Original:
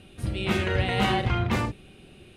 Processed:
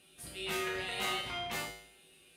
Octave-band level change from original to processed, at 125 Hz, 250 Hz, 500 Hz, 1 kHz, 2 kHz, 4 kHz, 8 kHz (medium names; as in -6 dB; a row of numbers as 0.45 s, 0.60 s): -25.0 dB, -17.5 dB, -11.0 dB, -11.0 dB, -7.5 dB, -4.5 dB, +1.5 dB